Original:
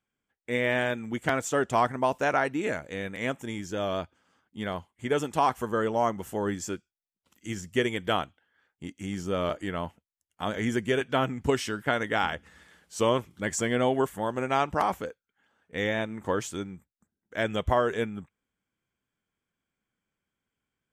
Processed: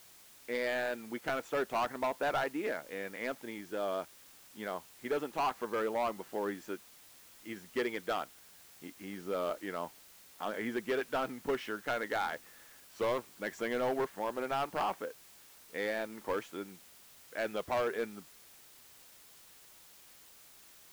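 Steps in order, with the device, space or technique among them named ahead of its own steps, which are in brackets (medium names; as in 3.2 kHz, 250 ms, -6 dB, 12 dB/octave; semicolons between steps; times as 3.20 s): aircraft radio (band-pass 300–2500 Hz; hard clipper -23 dBFS, distortion -9 dB; white noise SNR 20 dB); trim -4 dB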